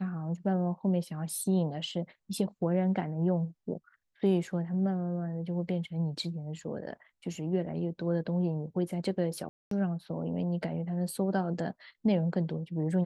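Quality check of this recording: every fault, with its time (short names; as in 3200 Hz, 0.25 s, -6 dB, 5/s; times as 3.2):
9.49–9.71 gap 0.223 s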